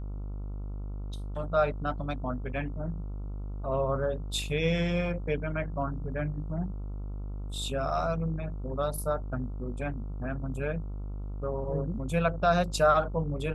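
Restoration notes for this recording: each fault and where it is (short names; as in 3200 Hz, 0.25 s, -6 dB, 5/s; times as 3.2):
buzz 50 Hz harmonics 28 -36 dBFS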